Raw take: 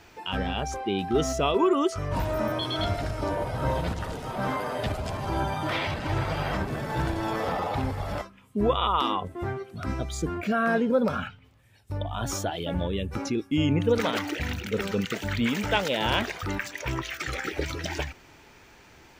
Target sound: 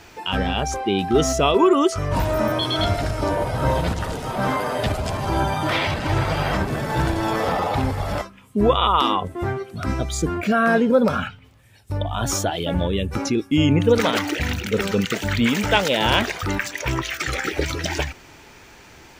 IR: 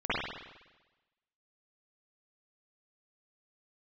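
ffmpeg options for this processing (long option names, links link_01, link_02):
-af "equalizer=frequency=9000:width=0.57:gain=3,volume=6.5dB"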